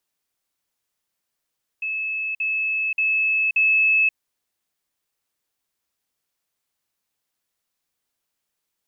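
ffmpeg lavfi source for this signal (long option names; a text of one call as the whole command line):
ffmpeg -f lavfi -i "aevalsrc='pow(10,(-23.5+3*floor(t/0.58))/20)*sin(2*PI*2600*t)*clip(min(mod(t,0.58),0.53-mod(t,0.58))/0.005,0,1)':duration=2.32:sample_rate=44100" out.wav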